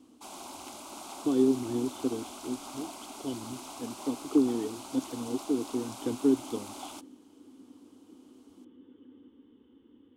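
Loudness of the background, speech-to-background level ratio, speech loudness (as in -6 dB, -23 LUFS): -43.5 LUFS, 12.0 dB, -31.5 LUFS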